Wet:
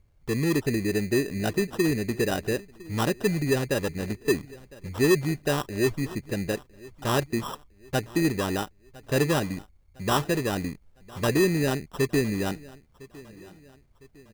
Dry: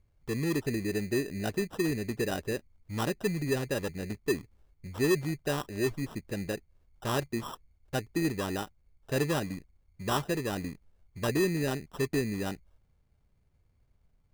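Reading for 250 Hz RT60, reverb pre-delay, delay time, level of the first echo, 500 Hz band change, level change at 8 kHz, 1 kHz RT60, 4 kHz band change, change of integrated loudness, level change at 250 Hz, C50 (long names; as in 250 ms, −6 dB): no reverb audible, no reverb audible, 1,007 ms, −21.5 dB, +5.5 dB, +5.5 dB, no reverb audible, +5.5 dB, +5.5 dB, +5.5 dB, no reverb audible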